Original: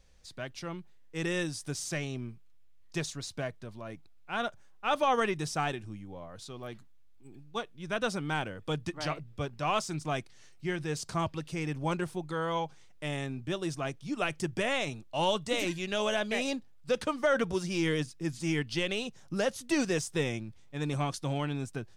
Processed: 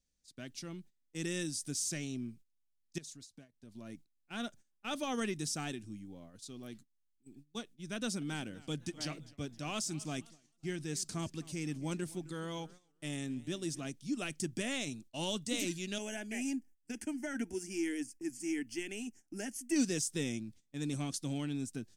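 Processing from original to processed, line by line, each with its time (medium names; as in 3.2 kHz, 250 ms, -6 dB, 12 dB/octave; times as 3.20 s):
2.98–3.72 s: compression 8:1, threshold -45 dBFS
7.96–13.87 s: modulated delay 260 ms, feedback 43%, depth 139 cents, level -20 dB
15.98–19.76 s: static phaser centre 780 Hz, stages 8
whole clip: graphic EQ 250/500/1000/8000 Hz +11/-4/-8/+3 dB; gate -45 dBFS, range -15 dB; tone controls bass -2 dB, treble +9 dB; trim -7.5 dB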